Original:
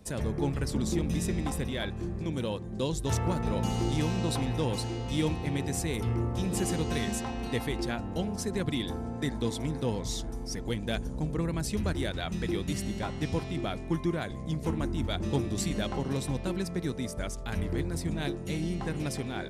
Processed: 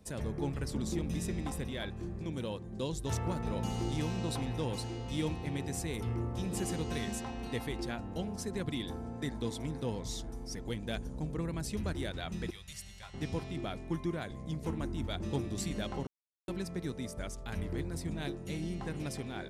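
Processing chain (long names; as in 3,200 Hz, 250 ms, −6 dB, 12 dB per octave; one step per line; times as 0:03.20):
0:12.50–0:13.14: guitar amp tone stack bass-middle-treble 10-0-10
0:16.07–0:16.48: silence
level −5.5 dB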